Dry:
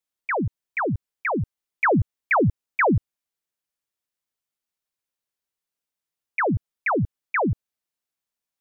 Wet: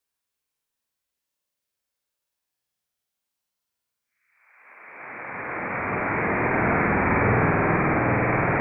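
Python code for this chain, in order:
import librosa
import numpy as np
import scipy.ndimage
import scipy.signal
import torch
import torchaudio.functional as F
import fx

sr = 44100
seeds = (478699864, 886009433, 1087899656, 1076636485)

y = fx.room_flutter(x, sr, wall_m=8.5, rt60_s=1.5)
y = fx.paulstretch(y, sr, seeds[0], factor=4.7, window_s=1.0, from_s=4.99)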